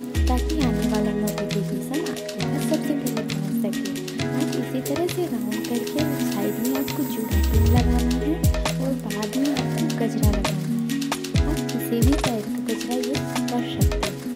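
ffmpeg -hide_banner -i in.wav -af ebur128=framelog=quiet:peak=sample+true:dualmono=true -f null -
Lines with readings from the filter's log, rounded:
Integrated loudness:
  I:         -20.8 LUFS
  Threshold: -30.8 LUFS
Loudness range:
  LRA:         3.0 LU
  Threshold: -40.8 LUFS
  LRA low:   -22.5 LUFS
  LRA high:  -19.5 LUFS
Sample peak:
  Peak:       -8.0 dBFS
True peak:
  Peak:       -8.0 dBFS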